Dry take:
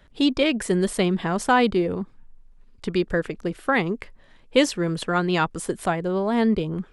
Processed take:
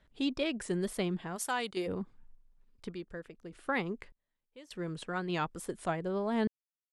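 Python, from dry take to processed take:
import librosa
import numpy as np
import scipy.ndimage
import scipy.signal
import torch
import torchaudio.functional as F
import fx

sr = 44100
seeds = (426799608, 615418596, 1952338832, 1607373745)

y = fx.riaa(x, sr, side='recording', at=(1.35, 1.86), fade=0.02)
y = fx.tremolo_random(y, sr, seeds[0], hz=1.7, depth_pct=100)
y = fx.wow_flutter(y, sr, seeds[1], rate_hz=2.1, depth_cents=61.0)
y = F.gain(torch.from_numpy(y), -8.5).numpy()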